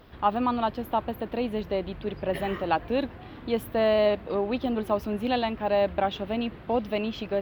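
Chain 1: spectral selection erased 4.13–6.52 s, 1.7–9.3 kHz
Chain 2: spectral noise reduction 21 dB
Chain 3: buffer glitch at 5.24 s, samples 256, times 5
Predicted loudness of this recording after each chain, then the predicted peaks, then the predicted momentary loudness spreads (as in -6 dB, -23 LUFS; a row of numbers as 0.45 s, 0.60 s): -28.0 LUFS, -29.5 LUFS, -28.0 LUFS; -11.5 dBFS, -11.5 dBFS, -11.5 dBFS; 7 LU, 9 LU, 7 LU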